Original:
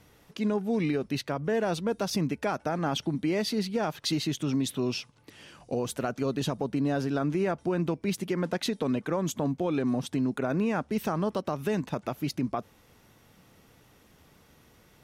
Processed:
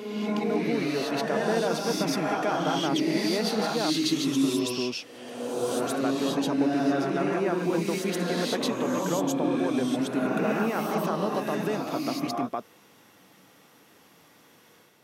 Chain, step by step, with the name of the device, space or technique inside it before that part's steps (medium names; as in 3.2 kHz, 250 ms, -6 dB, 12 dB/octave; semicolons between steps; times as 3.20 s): reverse reverb (reverse; reverberation RT60 1.5 s, pre-delay 110 ms, DRR -2.5 dB; reverse); high-pass 230 Hz 12 dB/octave